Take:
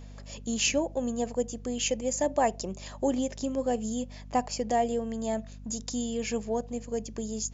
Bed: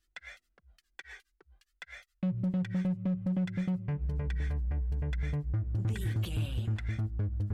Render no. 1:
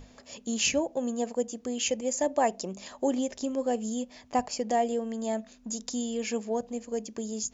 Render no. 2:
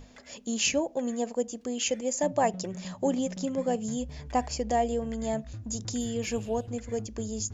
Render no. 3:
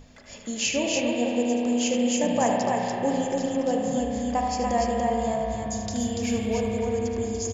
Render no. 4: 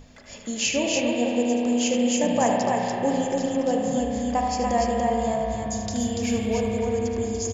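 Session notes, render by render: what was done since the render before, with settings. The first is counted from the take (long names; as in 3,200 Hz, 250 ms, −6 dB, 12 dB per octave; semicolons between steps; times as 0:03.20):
mains-hum notches 50/100/150/200 Hz
mix in bed −9.5 dB
loudspeakers that aren't time-aligned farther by 26 metres −9 dB, 99 metres −3 dB; spring reverb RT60 3.8 s, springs 33 ms, chirp 60 ms, DRR 0 dB
level +1.5 dB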